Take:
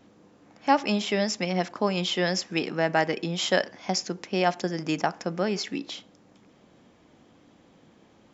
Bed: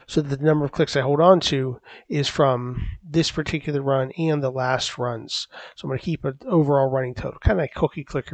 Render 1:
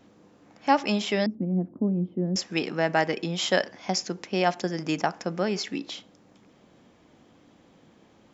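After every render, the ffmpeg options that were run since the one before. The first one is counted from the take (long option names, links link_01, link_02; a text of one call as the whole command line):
ffmpeg -i in.wav -filter_complex "[0:a]asettb=1/sr,asplit=3[link_01][link_02][link_03];[link_01]atrim=end=1.264[link_04];[link_02]atrim=start=1.26:end=2.36,asetpts=PTS-STARTPTS,afade=type=in:duration=0.004:curve=qsin,afade=type=out:start_time=1.096:duration=0.004:curve=qsin,lowpass=frequency=260:width_type=q:width=2[link_05];[link_03]atrim=start=2.356[link_06];[link_04][link_05]acrossfade=duration=0.004:curve1=hsin:curve2=qsin[link_07];[link_07][link_06]acrossfade=duration=0.004:curve1=qsin:curve2=hsin" out.wav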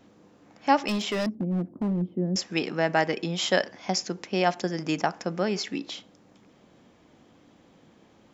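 ffmpeg -i in.wav -filter_complex "[0:a]asettb=1/sr,asplit=3[link_01][link_02][link_03];[link_01]atrim=end=0.884[link_04];[link_02]atrim=start=0.88:end=2.02,asetpts=PTS-STARTPTS,afade=type=in:duration=0.004:curve=qsin,afade=type=out:start_time=1.136:duration=0.004:curve=qsin,asoftclip=type=hard:threshold=-23dB[link_05];[link_03]atrim=start=2.016[link_06];[link_04][link_05]acrossfade=duration=0.004:curve1=hsin:curve2=qsin[link_07];[link_07][link_06]acrossfade=duration=0.004:curve1=qsin:curve2=hsin" out.wav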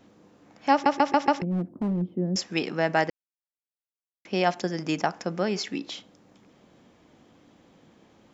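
ffmpeg -i in.wav -filter_complex "[0:a]asplit=8[link_01][link_02][link_03][link_04][link_05][link_06][link_07][link_08];[link_01]atrim=end=0.862[link_09];[link_02]atrim=start=0.718:end=0.862[link_10];[link_03]atrim=start=0.718:end=0.862[link_11];[link_04]atrim=start=0.718:end=0.862[link_12];[link_05]atrim=start=0.718:end=0.862[link_13];[link_06]atrim=start=1.418:end=3.1,asetpts=PTS-STARTPTS,afade=type=out:start_time=1.678:duration=0.004:curve=hsin[link_14];[link_07]atrim=start=3.1:end=4.25,asetpts=PTS-STARTPTS,volume=0[link_15];[link_08]atrim=start=4.25,asetpts=PTS-STARTPTS,afade=type=in:duration=0.004:curve=hsin[link_16];[link_09][link_10]acrossfade=duration=0.004:curve1=hsin:curve2=hsin[link_17];[link_17][link_11]acrossfade=duration=0.004:curve1=hsin:curve2=hsin[link_18];[link_18][link_12]acrossfade=duration=0.004:curve1=hsin:curve2=hsin[link_19];[link_19][link_13]acrossfade=duration=0.004:curve1=hsin:curve2=hsin[link_20];[link_14][link_15][link_16]concat=n=3:v=0:a=1[link_21];[link_20][link_21]acrossfade=duration=0.004:curve1=hsin:curve2=hsin" out.wav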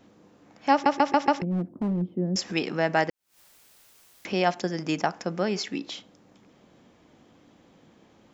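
ffmpeg -i in.wav -filter_complex "[0:a]asettb=1/sr,asplit=3[link_01][link_02][link_03];[link_01]atrim=end=2.394[link_04];[link_02]atrim=start=2.39:end=4.41,asetpts=PTS-STARTPTS,afade=type=in:duration=0.004:curve=qsin,afade=type=out:start_time=2.016:duration=0.004:curve=qsin,acompressor=mode=upward:threshold=-26dB:ratio=2.5:attack=3.2:release=140:knee=2.83:detection=peak[link_05];[link_03]atrim=start=4.406[link_06];[link_04][link_05]acrossfade=duration=0.004:curve1=hsin:curve2=qsin[link_07];[link_07][link_06]acrossfade=duration=0.004:curve1=qsin:curve2=hsin" out.wav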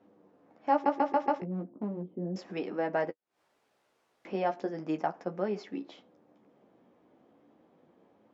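ffmpeg -i in.wav -af "bandpass=frequency=520:width_type=q:width=0.73:csg=0,flanger=delay=9.6:depth=6.8:regen=-23:speed=0.36:shape=triangular" out.wav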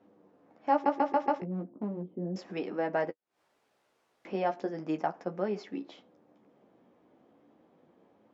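ffmpeg -i in.wav -af anull out.wav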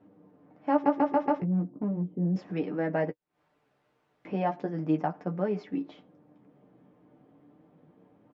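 ffmpeg -i in.wav -af "bass=frequency=250:gain=10,treble=frequency=4000:gain=-11,aecho=1:1:6.7:0.45" out.wav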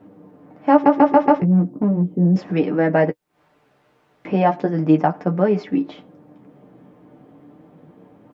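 ffmpeg -i in.wav -af "volume=12dB,alimiter=limit=-1dB:level=0:latency=1" out.wav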